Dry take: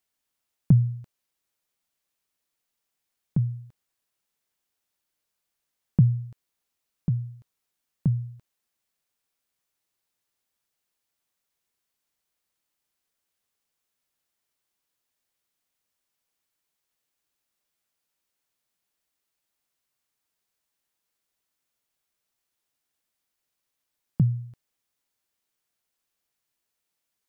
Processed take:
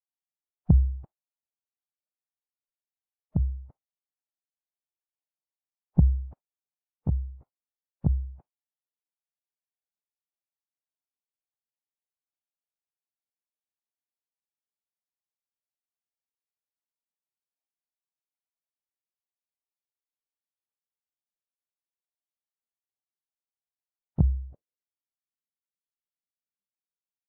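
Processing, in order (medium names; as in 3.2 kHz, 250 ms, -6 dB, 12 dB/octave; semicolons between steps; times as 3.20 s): spectral noise reduction 27 dB; formant-preserving pitch shift -10.5 st; low-pass sweep 820 Hz -> 220 Hz, 24.28–25.26 s; trim +2.5 dB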